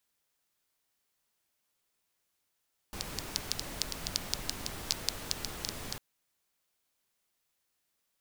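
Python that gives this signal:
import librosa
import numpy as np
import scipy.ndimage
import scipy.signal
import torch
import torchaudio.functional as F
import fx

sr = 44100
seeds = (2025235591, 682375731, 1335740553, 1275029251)

y = fx.rain(sr, seeds[0], length_s=3.05, drops_per_s=6.6, hz=4800.0, bed_db=-1)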